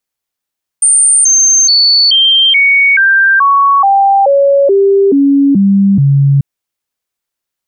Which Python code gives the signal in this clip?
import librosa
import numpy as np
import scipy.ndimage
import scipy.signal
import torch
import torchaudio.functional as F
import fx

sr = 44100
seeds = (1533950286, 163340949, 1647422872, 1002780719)

y = fx.stepped_sweep(sr, from_hz=8930.0, direction='down', per_octave=2, tones=13, dwell_s=0.43, gap_s=0.0, level_db=-4.5)